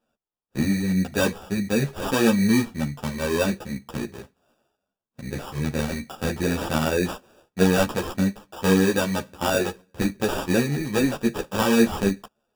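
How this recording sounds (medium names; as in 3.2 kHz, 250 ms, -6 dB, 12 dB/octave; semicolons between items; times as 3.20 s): aliases and images of a low sample rate 2.1 kHz, jitter 0%; a shimmering, thickened sound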